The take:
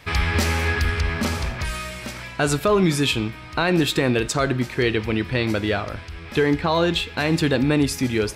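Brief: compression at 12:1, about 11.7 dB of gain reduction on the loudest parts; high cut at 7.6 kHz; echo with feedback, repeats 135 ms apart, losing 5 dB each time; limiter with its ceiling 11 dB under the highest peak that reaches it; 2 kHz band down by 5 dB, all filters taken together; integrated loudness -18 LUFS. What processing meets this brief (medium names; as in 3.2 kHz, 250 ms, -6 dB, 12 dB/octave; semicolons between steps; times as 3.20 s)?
low-pass 7.6 kHz; peaking EQ 2 kHz -6.5 dB; compression 12:1, threshold -27 dBFS; peak limiter -27 dBFS; feedback delay 135 ms, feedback 56%, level -5 dB; trim +16 dB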